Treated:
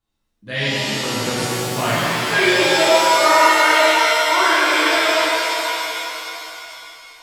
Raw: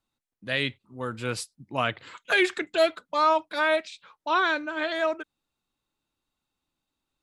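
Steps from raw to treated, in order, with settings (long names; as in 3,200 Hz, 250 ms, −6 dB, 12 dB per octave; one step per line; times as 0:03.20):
low-shelf EQ 100 Hz +10 dB
reverb with rising layers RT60 2.9 s, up +7 semitones, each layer −2 dB, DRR −10.5 dB
level −3.5 dB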